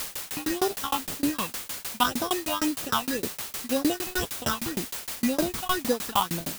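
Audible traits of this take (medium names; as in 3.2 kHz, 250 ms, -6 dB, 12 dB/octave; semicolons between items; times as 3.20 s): aliases and images of a low sample rate 2.2 kHz, jitter 0%; phasing stages 6, 1.9 Hz, lowest notch 430–2500 Hz; a quantiser's noise floor 6-bit, dither triangular; tremolo saw down 6.5 Hz, depth 100%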